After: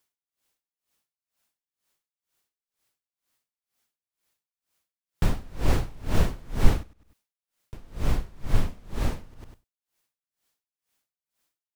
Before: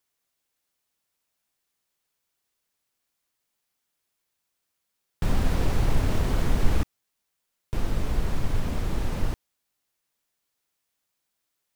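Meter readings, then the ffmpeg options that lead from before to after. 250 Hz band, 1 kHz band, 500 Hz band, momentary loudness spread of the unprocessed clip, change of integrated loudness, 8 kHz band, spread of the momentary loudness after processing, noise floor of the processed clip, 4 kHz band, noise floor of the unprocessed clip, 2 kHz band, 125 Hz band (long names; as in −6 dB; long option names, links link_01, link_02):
−2.0 dB, −1.5 dB, −1.0 dB, 8 LU, −0.5 dB, −1.5 dB, 11 LU, below −85 dBFS, −1.5 dB, −80 dBFS, −1.5 dB, −1.0 dB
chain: -filter_complex "[0:a]asplit=2[link_01][link_02];[link_02]aecho=0:1:100|200|300:0.473|0.071|0.0106[link_03];[link_01][link_03]amix=inputs=2:normalize=0,aeval=exprs='val(0)*pow(10,-28*(0.5-0.5*cos(2*PI*2.1*n/s))/20)':channel_layout=same,volume=4dB"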